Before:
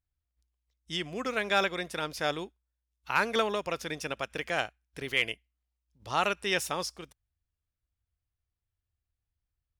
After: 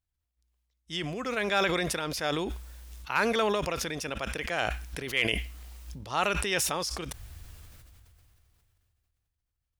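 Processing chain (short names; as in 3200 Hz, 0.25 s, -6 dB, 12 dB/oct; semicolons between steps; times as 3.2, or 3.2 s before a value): sustainer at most 20 dB/s; gain -1 dB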